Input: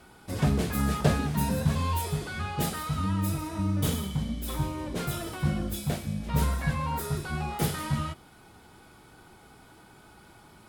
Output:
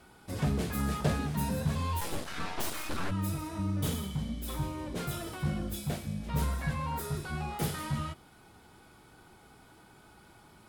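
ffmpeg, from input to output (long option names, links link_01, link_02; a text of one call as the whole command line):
ffmpeg -i in.wav -filter_complex "[0:a]asplit=2[link_01][link_02];[link_02]asoftclip=type=tanh:threshold=-24dB,volume=-4.5dB[link_03];[link_01][link_03]amix=inputs=2:normalize=0,asplit=3[link_04][link_05][link_06];[link_04]afade=type=out:start_time=2:duration=0.02[link_07];[link_05]aeval=exprs='0.224*(cos(1*acos(clip(val(0)/0.224,-1,1)))-cos(1*PI/2))+0.0891*(cos(3*acos(clip(val(0)/0.224,-1,1)))-cos(3*PI/2))+0.0562*(cos(8*acos(clip(val(0)/0.224,-1,1)))-cos(8*PI/2))':channel_layout=same,afade=type=in:start_time=2:duration=0.02,afade=type=out:start_time=3.1:duration=0.02[link_08];[link_06]afade=type=in:start_time=3.1:duration=0.02[link_09];[link_07][link_08][link_09]amix=inputs=3:normalize=0,volume=-7.5dB" out.wav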